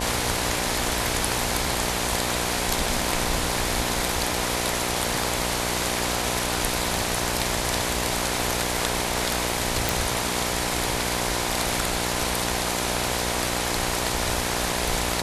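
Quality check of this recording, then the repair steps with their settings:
mains buzz 60 Hz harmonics 17 −30 dBFS
0:09.89: click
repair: click removal
hum removal 60 Hz, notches 17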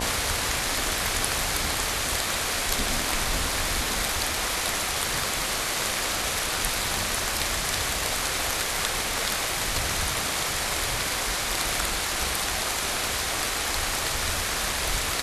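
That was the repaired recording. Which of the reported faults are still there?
none of them is left

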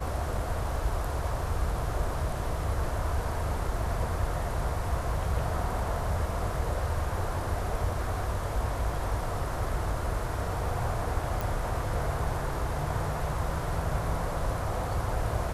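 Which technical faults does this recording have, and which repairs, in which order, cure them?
0:11.41: click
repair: click removal

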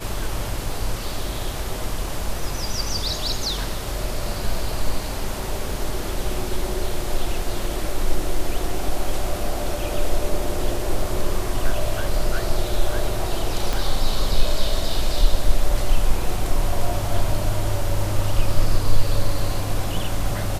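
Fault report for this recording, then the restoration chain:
0:13.73: click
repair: click removal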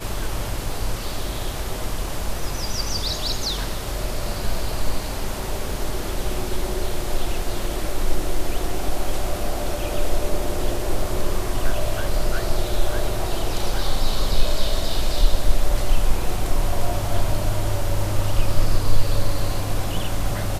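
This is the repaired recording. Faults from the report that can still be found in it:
0:13.73: click

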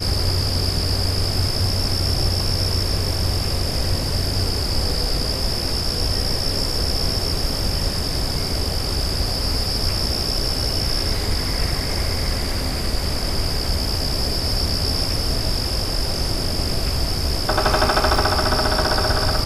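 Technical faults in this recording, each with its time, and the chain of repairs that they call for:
0:04.04: drop-out 2.7 ms
0:18.16: drop-out 2.7 ms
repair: repair the gap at 0:04.04, 2.7 ms
repair the gap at 0:18.16, 2.7 ms

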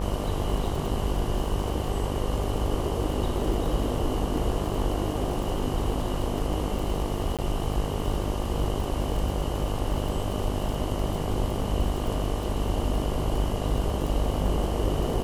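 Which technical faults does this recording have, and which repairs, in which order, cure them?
mains buzz 50 Hz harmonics 24 −31 dBFS
surface crackle 48 per second −31 dBFS
0:07.37–0:07.39: drop-out 17 ms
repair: click removal
hum removal 50 Hz, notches 24
repair the gap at 0:07.37, 17 ms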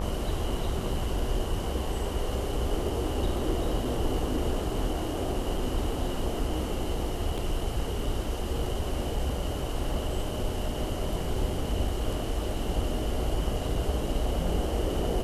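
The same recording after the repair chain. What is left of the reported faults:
none of them is left

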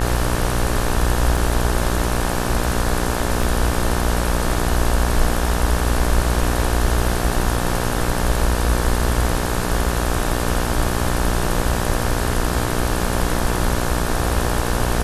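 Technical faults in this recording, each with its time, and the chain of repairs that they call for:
mains buzz 60 Hz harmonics 30 −23 dBFS
0:01.37: drop-out 3.8 ms
0:03.43: drop-out 3.5 ms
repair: hum removal 60 Hz, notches 30
repair the gap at 0:01.37, 3.8 ms
repair the gap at 0:03.43, 3.5 ms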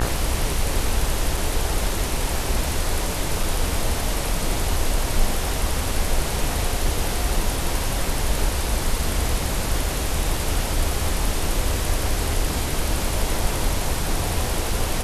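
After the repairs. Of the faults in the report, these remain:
none of them is left

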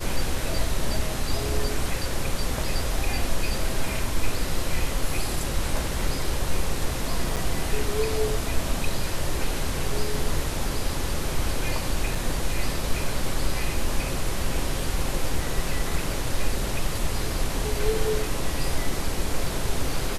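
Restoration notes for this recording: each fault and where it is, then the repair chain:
0:07.36–0:07.37: drop-out 6.8 ms
0:12.15: drop-out 4.3 ms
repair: repair the gap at 0:07.36, 6.8 ms
repair the gap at 0:12.15, 4.3 ms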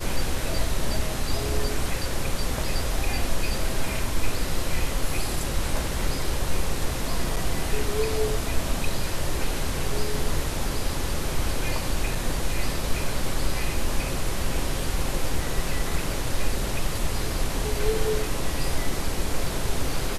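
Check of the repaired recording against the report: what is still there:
none of them is left

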